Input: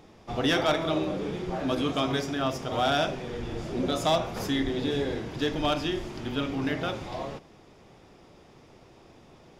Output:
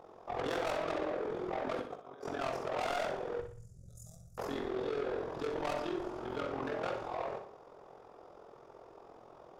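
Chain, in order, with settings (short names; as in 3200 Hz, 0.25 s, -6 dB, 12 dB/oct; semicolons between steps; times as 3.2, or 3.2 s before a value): band shelf 740 Hz +14.5 dB 2.3 oct; 1.81–2.29 negative-ratio compressor -30 dBFS, ratio -0.5; 3.41–4.38 elliptic band-stop 120–7200 Hz, stop band 40 dB; soft clip -21 dBFS, distortion -5 dB; AM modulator 43 Hz, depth 75%; on a send: flutter echo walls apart 10.4 m, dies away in 0.46 s; on the sum: gain -9 dB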